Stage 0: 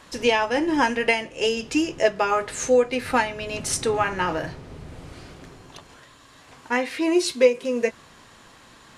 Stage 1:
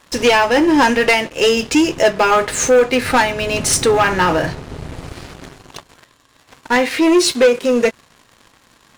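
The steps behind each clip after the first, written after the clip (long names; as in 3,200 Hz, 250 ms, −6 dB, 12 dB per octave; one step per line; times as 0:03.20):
leveller curve on the samples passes 3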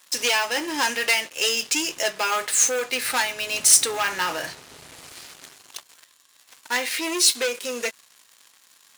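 spectral tilt +4.5 dB per octave
level −11 dB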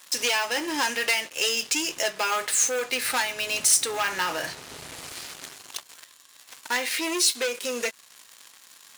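downward compressor 1.5 to 1, threshold −38 dBFS, peak gain reduction 10 dB
level +4.5 dB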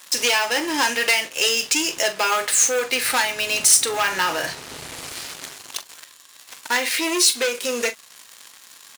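double-tracking delay 42 ms −13 dB
level +5 dB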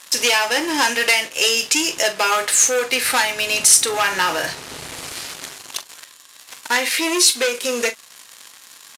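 downsampling to 32,000 Hz
level +2.5 dB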